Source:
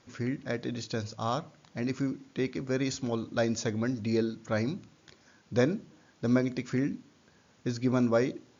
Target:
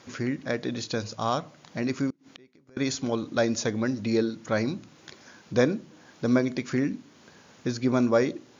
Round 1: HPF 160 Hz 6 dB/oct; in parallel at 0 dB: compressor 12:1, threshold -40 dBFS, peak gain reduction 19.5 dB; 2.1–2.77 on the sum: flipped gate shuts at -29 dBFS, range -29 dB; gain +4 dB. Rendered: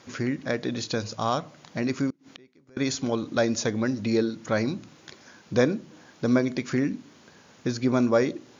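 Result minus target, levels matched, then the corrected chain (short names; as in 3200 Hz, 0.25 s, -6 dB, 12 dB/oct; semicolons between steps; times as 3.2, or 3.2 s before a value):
compressor: peak gain reduction -8 dB
HPF 160 Hz 6 dB/oct; in parallel at 0 dB: compressor 12:1, threshold -48.5 dBFS, peak gain reduction 27 dB; 2.1–2.77 on the sum: flipped gate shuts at -29 dBFS, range -29 dB; gain +4 dB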